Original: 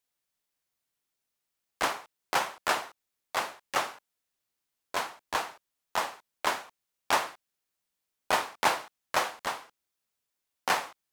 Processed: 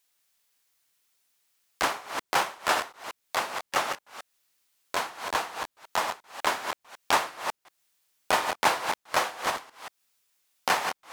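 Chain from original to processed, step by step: chunks repeated in reverse 183 ms, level -6.5 dB; tape noise reduction on one side only encoder only; trim +2 dB

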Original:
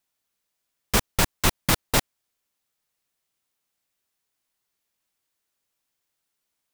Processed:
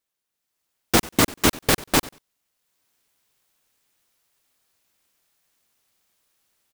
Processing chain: on a send: feedback delay 94 ms, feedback 17%, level -20.5 dB; on the sum: ring modulator 280 Hz; level rider gain up to 13.5 dB; trim -1 dB

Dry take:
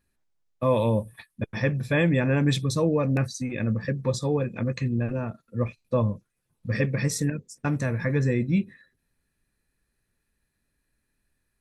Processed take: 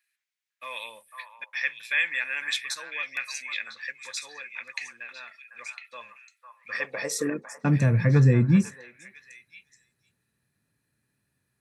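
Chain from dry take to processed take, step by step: high-pass sweep 2.1 kHz -> 120 Hz, 6.42–7.88 s; repeats whose band climbs or falls 502 ms, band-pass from 1.1 kHz, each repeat 1.4 oct, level -4.5 dB

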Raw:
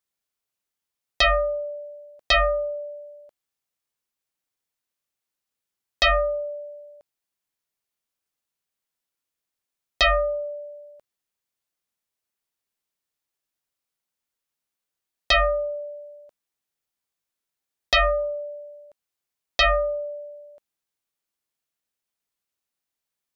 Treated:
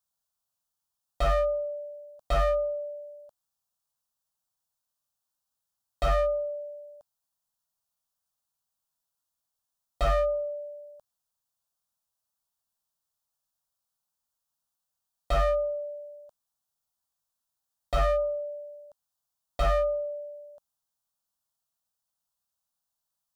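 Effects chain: static phaser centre 900 Hz, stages 4; slew-rate limiter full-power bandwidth 43 Hz; trim +2 dB

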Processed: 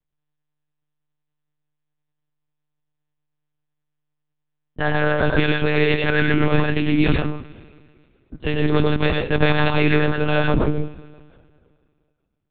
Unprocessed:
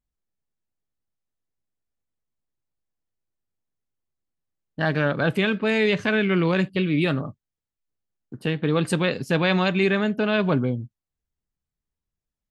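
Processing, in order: reverberation, pre-delay 92 ms, DRR 1 dB; monotone LPC vocoder at 8 kHz 150 Hz; trim +2 dB

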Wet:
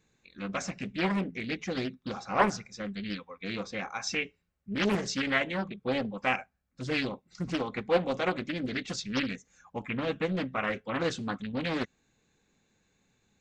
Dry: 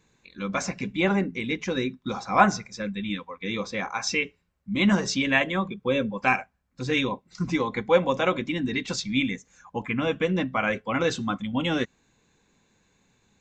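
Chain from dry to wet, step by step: band-stop 990 Hz, Q 7.7; loudspeaker Doppler distortion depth 0.95 ms; trim -5.5 dB

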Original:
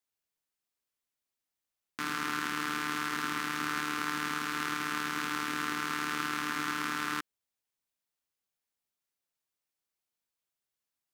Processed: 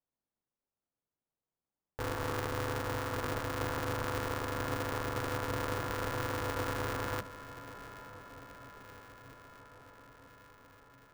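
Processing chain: octave divider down 2 oct, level -5 dB; Bessel low-pass 730 Hz, order 4; echo that smears into a reverb 901 ms, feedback 70%, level -14 dB; polarity switched at an audio rate 200 Hz; trim +5 dB

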